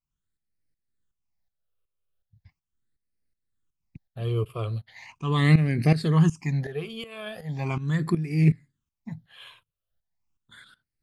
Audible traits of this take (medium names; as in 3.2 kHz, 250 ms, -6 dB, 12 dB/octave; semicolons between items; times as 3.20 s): tremolo saw up 2.7 Hz, depth 80%; phasing stages 8, 0.39 Hz, lowest notch 240–1000 Hz